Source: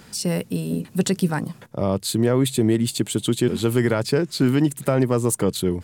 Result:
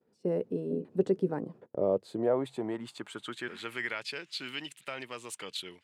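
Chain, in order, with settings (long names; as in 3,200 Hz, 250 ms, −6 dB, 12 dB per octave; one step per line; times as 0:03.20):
band-pass filter sweep 420 Hz → 2,800 Hz, 0:01.72–0:04.11
downward expander −47 dBFS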